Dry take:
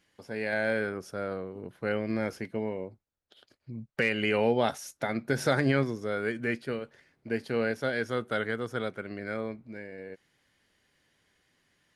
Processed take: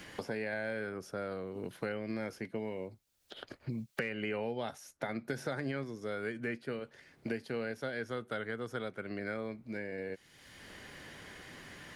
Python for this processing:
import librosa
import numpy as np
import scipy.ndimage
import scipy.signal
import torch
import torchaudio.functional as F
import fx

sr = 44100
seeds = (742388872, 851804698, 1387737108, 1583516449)

y = fx.quant_float(x, sr, bits=8)
y = fx.band_squash(y, sr, depth_pct=100)
y = F.gain(torch.from_numpy(y), -8.0).numpy()